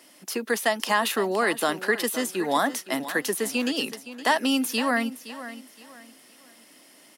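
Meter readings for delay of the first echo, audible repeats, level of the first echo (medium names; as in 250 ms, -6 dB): 516 ms, 3, -14.0 dB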